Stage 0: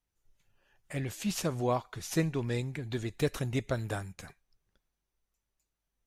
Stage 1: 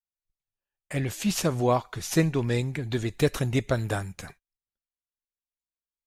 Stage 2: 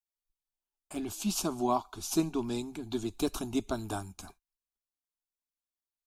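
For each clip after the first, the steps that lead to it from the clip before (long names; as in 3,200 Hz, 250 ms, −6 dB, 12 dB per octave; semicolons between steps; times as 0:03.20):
noise gate −56 dBFS, range −31 dB; level +6.5 dB
phaser with its sweep stopped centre 510 Hz, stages 6; level −2 dB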